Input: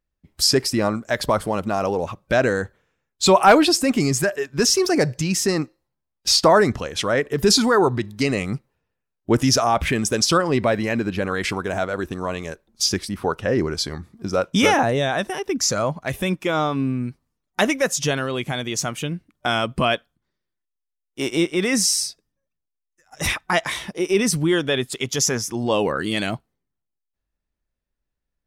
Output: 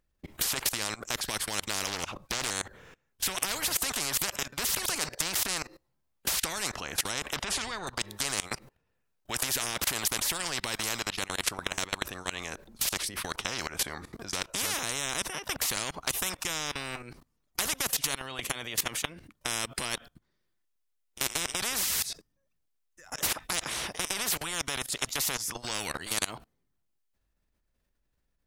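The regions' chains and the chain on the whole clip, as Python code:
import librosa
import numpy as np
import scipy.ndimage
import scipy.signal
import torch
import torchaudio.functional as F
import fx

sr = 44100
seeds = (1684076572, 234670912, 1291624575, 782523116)

y = fx.chain(x, sr, fx.low_shelf(hz=110.0, db=11.5),
    fx.doppler_dist(depth_ms=0.76), at=(1.87, 2.51))
y = fx.chain(y, sr, fx.lowpass(hz=3500.0, slope=12),
    fx.low_shelf(hz=120.0, db=11.5), at=(7.36, 7.87))
y = fx.level_steps(y, sr, step_db=24)
y = fx.spectral_comp(y, sr, ratio=10.0)
y = F.gain(torch.from_numpy(y), 5.5).numpy()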